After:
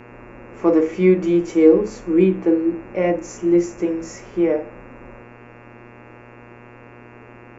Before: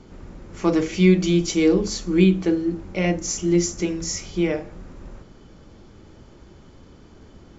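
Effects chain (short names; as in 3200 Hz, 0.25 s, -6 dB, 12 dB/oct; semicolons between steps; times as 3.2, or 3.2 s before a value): harmonic-percussive split harmonic +5 dB; graphic EQ 125/250/500/1000/2000/4000 Hz -11/+10/+12/+9/+6/-9 dB; buzz 120 Hz, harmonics 23, -33 dBFS -3 dB/oct; gain -11.5 dB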